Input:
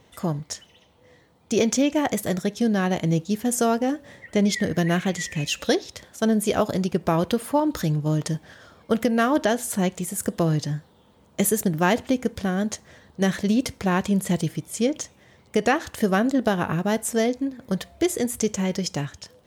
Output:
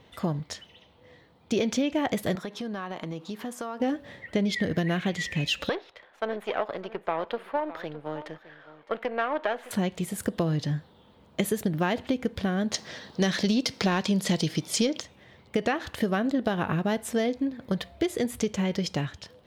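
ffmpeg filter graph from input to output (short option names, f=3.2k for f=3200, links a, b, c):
-filter_complex "[0:a]asettb=1/sr,asplit=3[a][b][c];[a]atrim=end=2.354[d];[b]atrim=start=2.35:end=3.8,asetpts=PTS-STARTPTS,afade=t=in:d=0.004:c=qsin,afade=t=out:st=1.446:d=0.004:c=qsin,highpass=200,equalizer=f=1.1k:t=o:w=0.79:g=11.5,acompressor=threshold=-32dB:ratio=5:attack=3.2:release=140:knee=1:detection=peak[e];[c]atrim=start=3.796[f];[d][e]acrossfade=d=0.004:c1=hsin:c2=qsin[g];[g][f]acrossfade=d=0.004:c1=qsin:c2=hsin,asettb=1/sr,asplit=3[h][i][j];[h]atrim=end=5.694[k];[i]atrim=start=5.69:end=9.71,asetpts=PTS-STARTPTS,afade=t=in:d=0.004:c=qsin,afade=t=out:st=4.016:d=0.004:c=qsin,aeval=exprs='if(lt(val(0),0),0.447*val(0),val(0))':c=same,acrossover=split=430 2800:gain=0.0891 1 0.112[l][m][n];[l][m][n]amix=inputs=3:normalize=0,aecho=1:1:611:0.141,atrim=end_sample=177282[o];[j]atrim=start=9.706[p];[k][o]acrossfade=d=0.004:c1=hsin:c2=qsin[q];[q][p]acrossfade=d=0.004:c1=qsin:c2=hsin,asettb=1/sr,asplit=3[r][s][t];[r]atrim=end=12.744[u];[s]atrim=start=12.74:end=15,asetpts=PTS-STARTPTS,afade=t=in:d=0.004:c=qsin,afade=t=out:st=2.256:d=0.004:c=qsin,highpass=150,equalizer=f=5.3k:w=1.3:g=12,acontrast=69[v];[t]atrim=start=14.996[w];[u][v]acrossfade=d=0.004:c1=hsin:c2=qsin[x];[x][w]acrossfade=d=0.004:c1=qsin:c2=hsin,highshelf=f=5.1k:t=q:w=1.5:g=-7.5,acompressor=threshold=-22dB:ratio=6"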